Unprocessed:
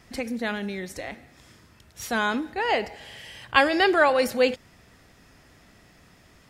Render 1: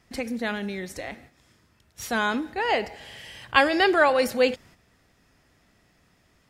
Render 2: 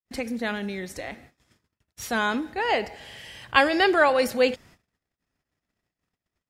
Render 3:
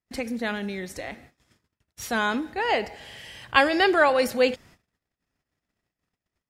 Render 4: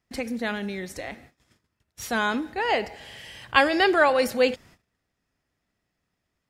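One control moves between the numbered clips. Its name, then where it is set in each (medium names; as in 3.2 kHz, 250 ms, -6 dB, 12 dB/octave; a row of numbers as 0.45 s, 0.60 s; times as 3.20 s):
gate, range: -8 dB, -56 dB, -37 dB, -24 dB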